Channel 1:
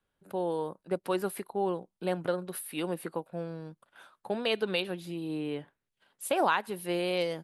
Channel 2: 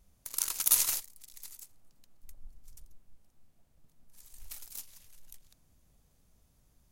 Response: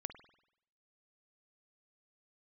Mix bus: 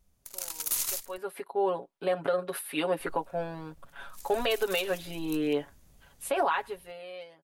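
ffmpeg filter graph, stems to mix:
-filter_complex "[0:a]dynaudnorm=framelen=610:gausssize=5:maxgain=5dB,bass=frequency=250:gain=-14,treble=frequency=4000:gain=-8,aecho=1:1:7.2:0.92,volume=-10dB,afade=type=in:start_time=1.03:duration=0.37:silence=0.281838,afade=type=out:start_time=6.49:duration=0.44:silence=0.298538[link_01];[1:a]asoftclip=type=hard:threshold=-21.5dB,volume=-3.5dB,asplit=3[link_02][link_03][link_04];[link_02]atrim=end=1.18,asetpts=PTS-STARTPTS,afade=type=out:start_time=1.176:duration=0.004:curve=hsin[link_05];[link_03]atrim=start=1.18:end=2.99,asetpts=PTS-STARTPTS,volume=0[link_06];[link_04]atrim=start=2.99,asetpts=PTS-STARTPTS,afade=type=in:duration=0.004:curve=hsin[link_07];[link_05][link_06][link_07]concat=n=3:v=0:a=1[link_08];[link_01][link_08]amix=inputs=2:normalize=0,dynaudnorm=framelen=410:gausssize=7:maxgain=11dB,alimiter=limit=-17.5dB:level=0:latency=1:release=86"

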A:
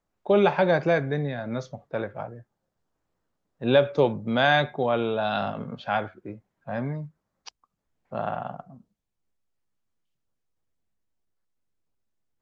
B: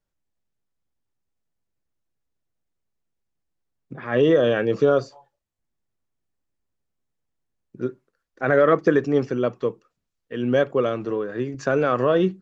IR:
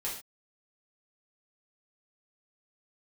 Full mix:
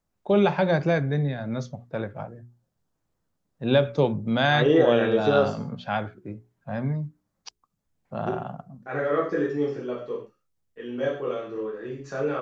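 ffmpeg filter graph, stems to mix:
-filter_complex "[0:a]bass=frequency=250:gain=10,treble=frequency=4000:gain=5,bandreject=frequency=60:width_type=h:width=6,bandreject=frequency=120:width_type=h:width=6,bandreject=frequency=180:width_type=h:width=6,bandreject=frequency=240:width_type=h:width=6,bandreject=frequency=300:width_type=h:width=6,bandreject=frequency=360:width_type=h:width=6,bandreject=frequency=420:width_type=h:width=6,volume=-2dB,asplit=2[link_01][link_02];[1:a]agate=range=-33dB:threshold=-44dB:ratio=3:detection=peak,adelay=450,volume=-6dB,asplit=2[link_03][link_04];[link_04]volume=-4dB[link_05];[link_02]apad=whole_len=567500[link_06];[link_03][link_06]sidechaingate=range=-33dB:threshold=-49dB:ratio=16:detection=peak[link_07];[2:a]atrim=start_sample=2205[link_08];[link_05][link_08]afir=irnorm=-1:irlink=0[link_09];[link_01][link_07][link_09]amix=inputs=3:normalize=0,lowshelf=frequency=99:gain=-6"

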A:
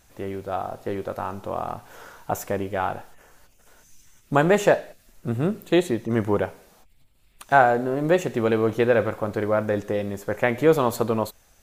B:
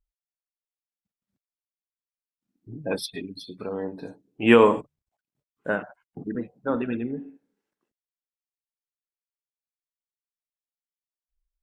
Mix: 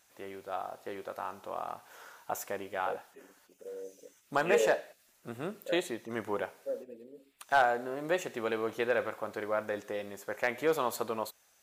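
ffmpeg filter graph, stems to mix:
ffmpeg -i stem1.wav -i stem2.wav -filter_complex "[0:a]highpass=frequency=780:poles=1,volume=11.5dB,asoftclip=hard,volume=-11.5dB,volume=-5.5dB[link_01];[1:a]afwtdn=0.0251,asplit=3[link_02][link_03][link_04];[link_02]bandpass=frequency=530:width_type=q:width=8,volume=0dB[link_05];[link_03]bandpass=frequency=1840:width_type=q:width=8,volume=-6dB[link_06];[link_04]bandpass=frequency=2480:width_type=q:width=8,volume=-9dB[link_07];[link_05][link_06][link_07]amix=inputs=3:normalize=0,volume=-4.5dB[link_08];[link_01][link_08]amix=inputs=2:normalize=0" out.wav

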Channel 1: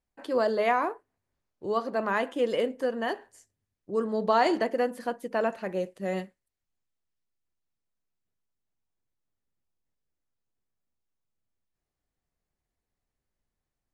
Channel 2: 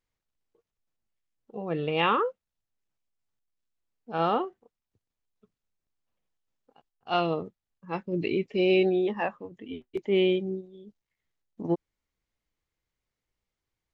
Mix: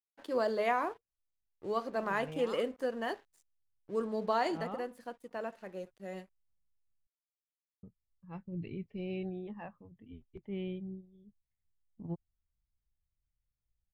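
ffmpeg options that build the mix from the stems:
ffmpeg -i stem1.wav -i stem2.wav -filter_complex "[0:a]highshelf=frequency=6500:gain=2.5,aeval=exprs='sgn(val(0))*max(abs(val(0))-0.00251,0)':channel_layout=same,volume=-5.5dB,afade=type=out:start_time=4.08:duration=0.68:silence=0.473151,asplit=2[link_01][link_02];[1:a]lowpass=frequency=1400:poles=1,asubboost=boost=9.5:cutoff=120,adelay=400,volume=-14dB,asplit=3[link_03][link_04][link_05];[link_03]atrim=end=7.07,asetpts=PTS-STARTPTS,afade=type=out:start_time=7.066:duration=0.004:curve=hsin[link_06];[link_04]atrim=start=7.07:end=7.83,asetpts=PTS-STARTPTS,volume=0[link_07];[link_05]atrim=start=7.83,asetpts=PTS-STARTPTS,afade=type=in:duration=0.004:curve=hsin[link_08];[link_06][link_07][link_08]concat=n=3:v=0:a=1[link_09];[link_02]apad=whole_len=632336[link_10];[link_09][link_10]sidechaincompress=threshold=-36dB:ratio=8:attack=16:release=118[link_11];[link_01][link_11]amix=inputs=2:normalize=0" out.wav

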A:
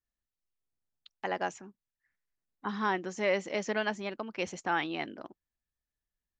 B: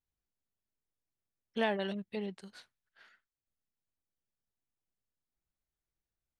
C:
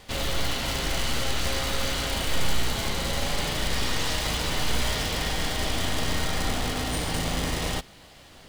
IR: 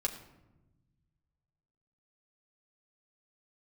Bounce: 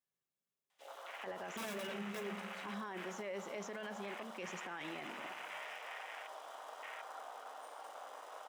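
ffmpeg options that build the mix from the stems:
-filter_complex "[0:a]volume=-9.5dB,asplit=3[link_01][link_02][link_03];[link_02]volume=-10dB[link_04];[1:a]volume=32.5dB,asoftclip=hard,volume=-32.5dB,bandreject=frequency=50:width_type=h:width=6,bandreject=frequency=100:width_type=h:width=6,bandreject=frequency=150:width_type=h:width=6,bandreject=frequency=200:width_type=h:width=6,aeval=exprs='(mod(39.8*val(0)+1,2)-1)/39.8':channel_layout=same,volume=3dB,asplit=2[link_05][link_06];[link_06]volume=-8dB[link_07];[2:a]afwtdn=0.0316,highpass=frequency=640:width=0.5412,highpass=frequency=640:width=1.3066,adelay=700,volume=-12dB[link_08];[link_03]apad=whole_len=282038[link_09];[link_05][link_09]sidechaingate=range=-33dB:threshold=-60dB:ratio=16:detection=peak[link_10];[3:a]atrim=start_sample=2205[link_11];[link_04][link_07]amix=inputs=2:normalize=0[link_12];[link_12][link_11]afir=irnorm=-1:irlink=0[link_13];[link_01][link_10][link_08][link_13]amix=inputs=4:normalize=0,highpass=frequency=130:width=0.5412,highpass=frequency=130:width=1.3066,equalizer=frequency=4400:width=5.7:gain=-8,alimiter=level_in=10.5dB:limit=-24dB:level=0:latency=1:release=19,volume=-10.5dB"

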